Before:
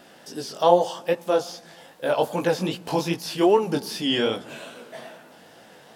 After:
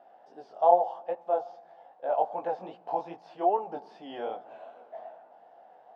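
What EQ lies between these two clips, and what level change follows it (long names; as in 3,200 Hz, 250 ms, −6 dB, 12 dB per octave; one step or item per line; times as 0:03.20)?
resonant band-pass 740 Hz, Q 5.9
high-frequency loss of the air 79 metres
+3.5 dB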